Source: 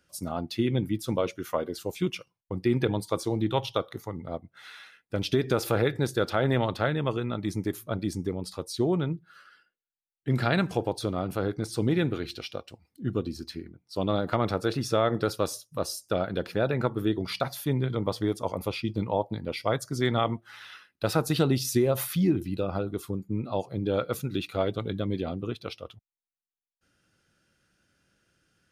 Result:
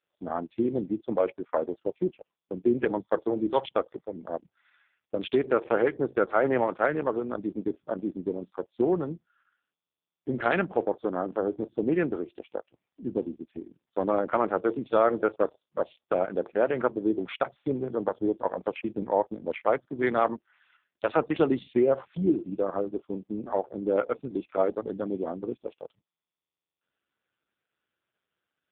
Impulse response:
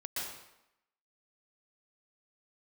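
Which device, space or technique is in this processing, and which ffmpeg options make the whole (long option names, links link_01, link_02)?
telephone: -filter_complex "[0:a]asplit=3[link_01][link_02][link_03];[link_01]afade=type=out:start_time=1.77:duration=0.02[link_04];[link_02]aemphasis=mode=reproduction:type=75fm,afade=type=in:start_time=1.77:duration=0.02,afade=type=out:start_time=2.71:duration=0.02[link_05];[link_03]afade=type=in:start_time=2.71:duration=0.02[link_06];[link_04][link_05][link_06]amix=inputs=3:normalize=0,highpass=100,afwtdn=0.0126,highpass=290,lowpass=3300,volume=4dB" -ar 8000 -c:a libopencore_amrnb -b:a 5150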